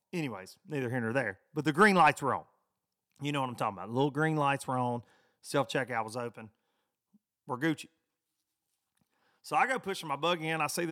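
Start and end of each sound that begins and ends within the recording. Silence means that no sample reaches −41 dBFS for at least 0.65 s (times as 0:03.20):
0:03.22–0:06.45
0:07.49–0:07.83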